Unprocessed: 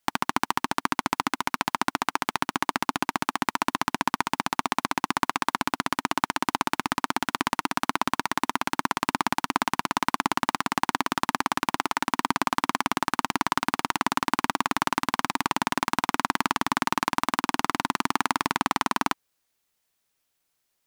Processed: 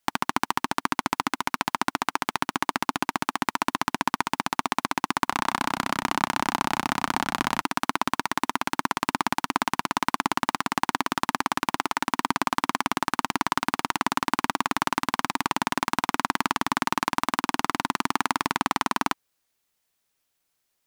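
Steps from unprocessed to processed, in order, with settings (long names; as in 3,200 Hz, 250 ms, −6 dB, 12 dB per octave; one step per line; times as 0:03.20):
0:05.12–0:07.62: echo with shifted repeats 157 ms, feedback 32%, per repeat −57 Hz, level −7 dB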